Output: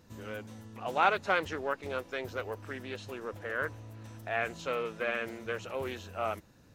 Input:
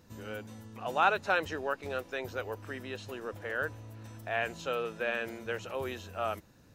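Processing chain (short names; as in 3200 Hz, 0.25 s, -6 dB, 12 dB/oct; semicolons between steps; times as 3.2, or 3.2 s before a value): Doppler distortion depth 0.19 ms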